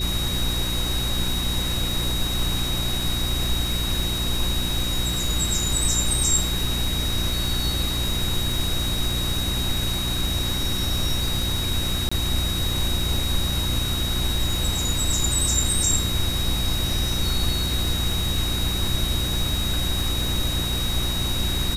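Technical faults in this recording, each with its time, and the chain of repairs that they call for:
crackle 22 per s -28 dBFS
hum 60 Hz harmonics 6 -28 dBFS
whine 3.8 kHz -27 dBFS
12.09–12.12 s: dropout 25 ms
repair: de-click; de-hum 60 Hz, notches 6; band-stop 3.8 kHz, Q 30; interpolate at 12.09 s, 25 ms

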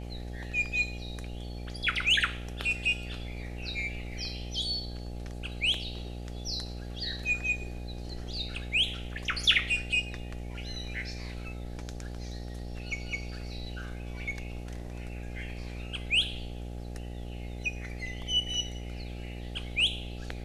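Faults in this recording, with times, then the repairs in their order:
buzz 60 Hz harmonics 14 -39 dBFS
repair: de-hum 60 Hz, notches 14

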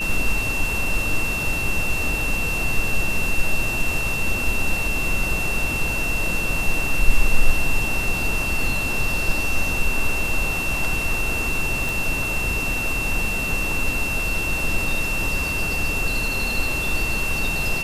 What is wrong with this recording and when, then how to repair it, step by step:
whine 2.7 kHz -24 dBFS
11.89 s: pop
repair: de-click; band-stop 2.7 kHz, Q 30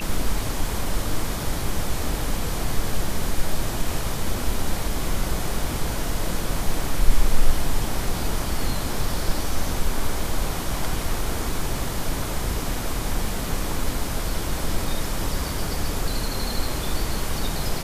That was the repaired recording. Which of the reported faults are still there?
nothing left

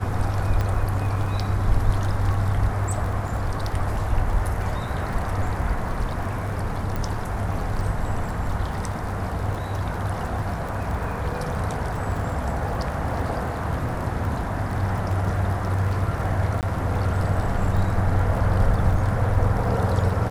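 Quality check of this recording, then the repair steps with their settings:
crackle 30 per s -30 dBFS
0.61 s: pop -14 dBFS
6.96 s: pop
16.61–16.63 s: dropout 18 ms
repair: de-click; interpolate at 16.61 s, 18 ms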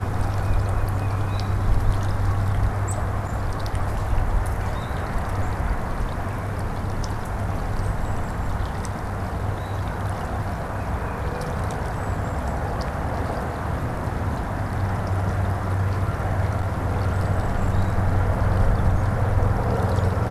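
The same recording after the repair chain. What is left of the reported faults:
nothing left

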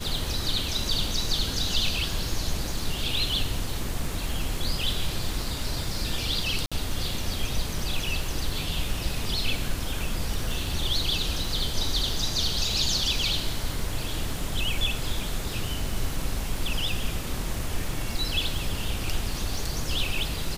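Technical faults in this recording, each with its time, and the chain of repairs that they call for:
crackle 43 per s -34 dBFS
6.66–6.72 s: dropout 56 ms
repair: de-click; interpolate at 6.66 s, 56 ms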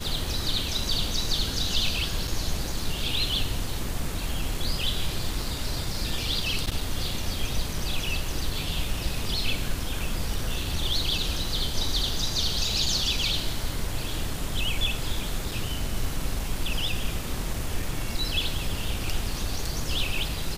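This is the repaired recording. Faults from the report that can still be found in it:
nothing left

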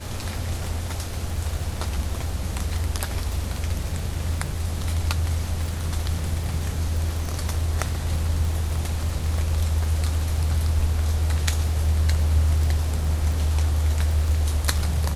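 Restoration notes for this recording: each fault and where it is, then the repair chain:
crackle 30 per s -29 dBFS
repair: de-click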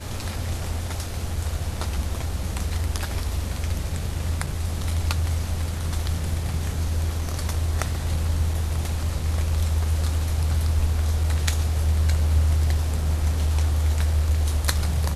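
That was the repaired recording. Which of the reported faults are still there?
nothing left

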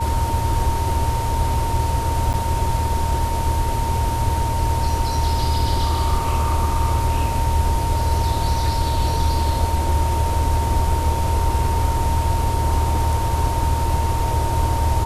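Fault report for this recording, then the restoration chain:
whine 920 Hz -24 dBFS
2.33–2.34 s: dropout 8.7 ms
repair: band-stop 920 Hz, Q 30; interpolate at 2.33 s, 8.7 ms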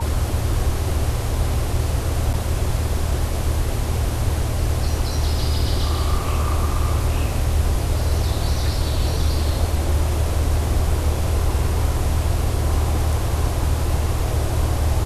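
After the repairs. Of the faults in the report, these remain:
nothing left

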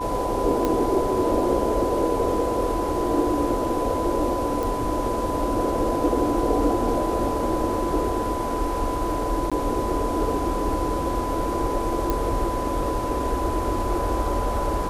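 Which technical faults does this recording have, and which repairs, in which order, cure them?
whine 1 kHz -28 dBFS
0.65 s: pop -10 dBFS
4.63 s: pop
9.50–9.52 s: dropout 16 ms
12.10 s: pop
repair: de-click; band-stop 1 kHz, Q 30; interpolate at 9.50 s, 16 ms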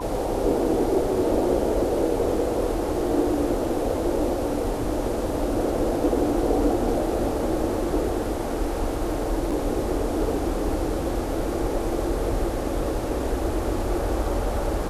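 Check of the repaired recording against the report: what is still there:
nothing left

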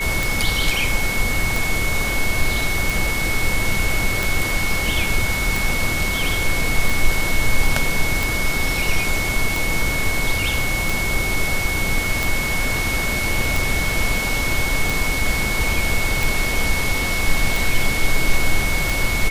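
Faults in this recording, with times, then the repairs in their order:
tick 45 rpm
whine 2.2 kHz -23 dBFS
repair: de-click; band-stop 2.2 kHz, Q 30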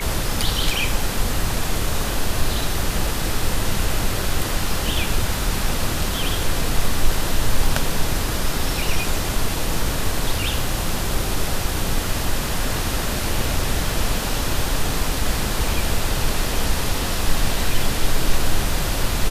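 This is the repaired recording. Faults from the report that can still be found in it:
nothing left

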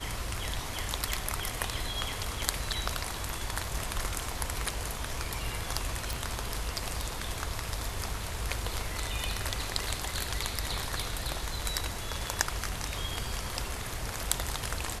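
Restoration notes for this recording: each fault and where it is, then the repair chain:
6.13 s: pop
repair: de-click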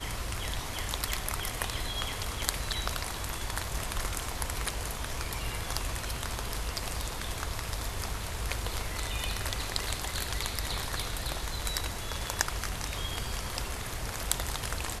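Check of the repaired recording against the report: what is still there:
nothing left

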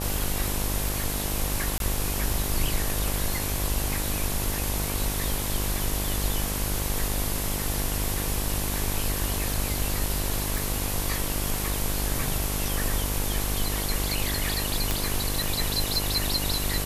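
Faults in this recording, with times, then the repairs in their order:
buzz 50 Hz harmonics 23 -31 dBFS
1.78–1.80 s: dropout 22 ms
10.58 s: pop
14.91 s: pop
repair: de-click; de-hum 50 Hz, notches 23; interpolate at 1.78 s, 22 ms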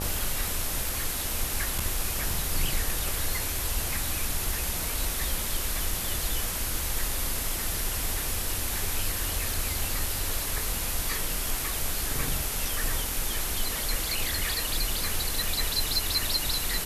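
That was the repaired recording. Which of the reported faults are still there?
nothing left

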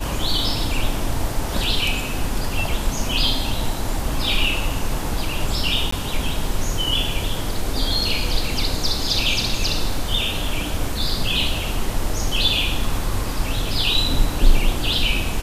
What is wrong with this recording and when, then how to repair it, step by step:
5.91–5.92 s: dropout 14 ms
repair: interpolate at 5.91 s, 14 ms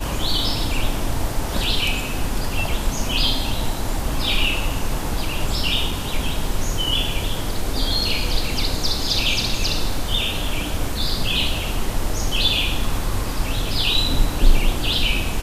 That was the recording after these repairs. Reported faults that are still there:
nothing left

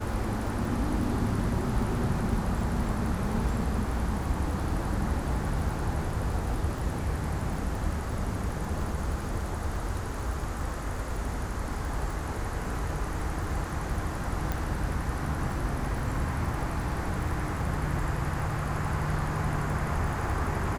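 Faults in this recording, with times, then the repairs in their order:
crackle 47 per s -36 dBFS
14.52 s: pop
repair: de-click

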